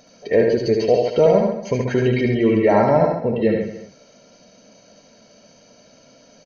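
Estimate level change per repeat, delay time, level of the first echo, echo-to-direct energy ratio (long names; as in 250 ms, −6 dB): repeats not evenly spaced, 74 ms, −4.5 dB, −2.0 dB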